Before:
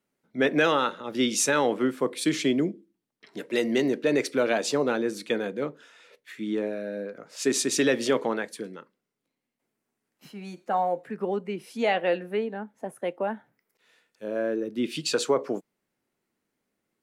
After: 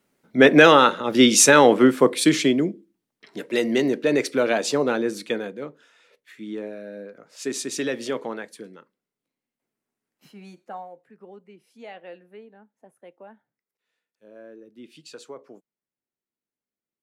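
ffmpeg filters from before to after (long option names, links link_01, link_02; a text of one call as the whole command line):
ffmpeg -i in.wav -af "volume=10dB,afade=type=out:start_time=2.02:duration=0.57:silence=0.446684,afade=type=out:start_time=5.16:duration=0.43:silence=0.446684,afade=type=out:start_time=10.44:duration=0.45:silence=0.237137" out.wav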